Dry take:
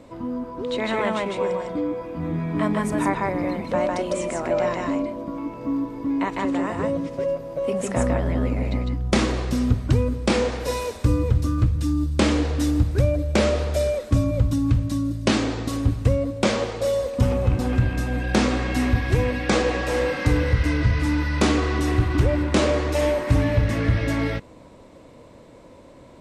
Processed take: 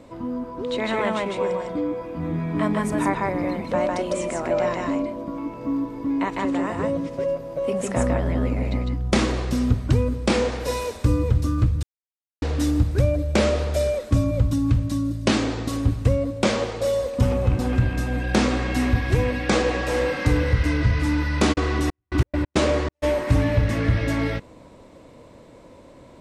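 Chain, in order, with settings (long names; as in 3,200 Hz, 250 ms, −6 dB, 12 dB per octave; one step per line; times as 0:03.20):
0:11.83–0:12.42: silence
0:21.52–0:23.02: gate pattern "xx..x.x.x" 137 BPM −60 dB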